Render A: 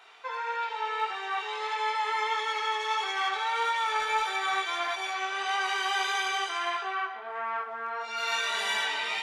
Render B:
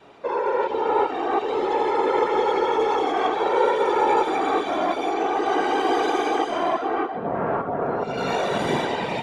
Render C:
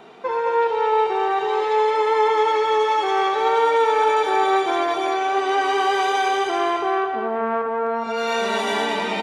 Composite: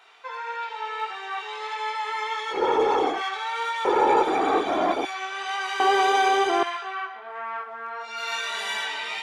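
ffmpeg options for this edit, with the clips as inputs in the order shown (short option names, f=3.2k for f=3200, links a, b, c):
-filter_complex "[1:a]asplit=2[a][b];[0:a]asplit=4[c][d][e][f];[c]atrim=end=2.65[g];[a]atrim=start=2.49:end=3.23[h];[d]atrim=start=3.07:end=3.852[i];[b]atrim=start=3.848:end=5.052[j];[e]atrim=start=5.048:end=5.802[k];[2:a]atrim=start=5.798:end=6.632[l];[f]atrim=start=6.628[m];[g][h]acrossfade=d=0.16:c1=tri:c2=tri[n];[n][i]acrossfade=d=0.16:c1=tri:c2=tri[o];[o][j]acrossfade=d=0.004:c1=hsin:c2=hsin[p];[p][k]acrossfade=d=0.004:c1=hsin:c2=hsin[q];[q][l]acrossfade=d=0.004:c1=hsin:c2=hsin[r];[r][m]acrossfade=d=0.004:c1=hsin:c2=hsin"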